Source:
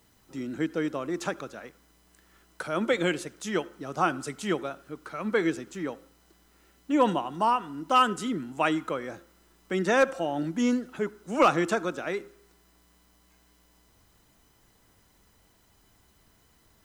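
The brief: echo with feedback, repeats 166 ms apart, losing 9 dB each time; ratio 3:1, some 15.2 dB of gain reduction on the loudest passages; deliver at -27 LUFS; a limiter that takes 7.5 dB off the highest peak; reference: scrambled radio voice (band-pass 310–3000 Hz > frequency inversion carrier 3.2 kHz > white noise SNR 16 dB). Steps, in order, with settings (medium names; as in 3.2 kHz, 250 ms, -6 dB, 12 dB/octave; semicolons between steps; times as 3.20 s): compression 3:1, threshold -37 dBFS; peak limiter -30 dBFS; band-pass 310–3000 Hz; feedback delay 166 ms, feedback 35%, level -9 dB; frequency inversion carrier 3.2 kHz; white noise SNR 16 dB; trim +13 dB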